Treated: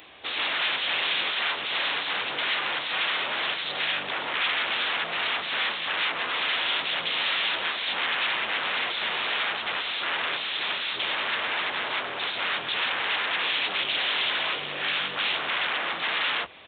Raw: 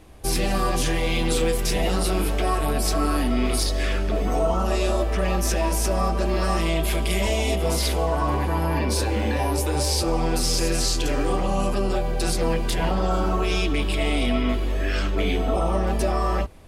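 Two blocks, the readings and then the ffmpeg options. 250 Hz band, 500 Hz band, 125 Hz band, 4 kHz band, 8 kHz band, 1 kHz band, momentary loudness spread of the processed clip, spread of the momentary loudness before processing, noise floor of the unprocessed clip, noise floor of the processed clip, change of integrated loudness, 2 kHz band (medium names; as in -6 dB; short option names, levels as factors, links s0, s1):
-20.0 dB, -13.5 dB, -28.0 dB, +5.5 dB, under -40 dB, -3.5 dB, 3 LU, 2 LU, -24 dBFS, -34 dBFS, -2.0 dB, +7.0 dB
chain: -af "aeval=exprs='0.316*sin(PI/2*7.08*val(0)/0.316)':c=same,highpass=63,aresample=8000,aresample=44100,areverse,acompressor=mode=upward:threshold=0.0631:ratio=2.5,areverse,aderivative"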